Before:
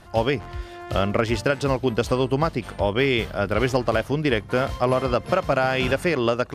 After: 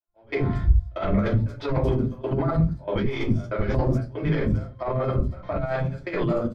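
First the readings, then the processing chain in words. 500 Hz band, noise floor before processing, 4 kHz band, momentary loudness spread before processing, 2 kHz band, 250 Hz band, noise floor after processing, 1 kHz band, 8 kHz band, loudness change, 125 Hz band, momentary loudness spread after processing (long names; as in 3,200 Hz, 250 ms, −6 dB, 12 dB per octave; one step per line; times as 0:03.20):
−5.5 dB, −40 dBFS, −13.0 dB, 4 LU, −9.5 dB, −1.0 dB, −48 dBFS, −7.5 dB, below −15 dB, −2.5 dB, +3.5 dB, 5 LU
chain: stylus tracing distortion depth 0.07 ms
high-shelf EQ 8,000 Hz −11.5 dB
gate pattern "....xxxx" 188 BPM −24 dB
rectangular room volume 130 cubic metres, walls furnished, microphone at 2.8 metres
compressor whose output falls as the input rises −16 dBFS, ratio −0.5
notch filter 2,800 Hz, Q 5.7
three-band delay without the direct sound mids, lows, highs 70/230 ms, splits 320/5,400 Hz
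brickwall limiter −13 dBFS, peak gain reduction 7.5 dB
bass and treble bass +6 dB, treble −9 dB
multiband upward and downward expander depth 70%
level −4 dB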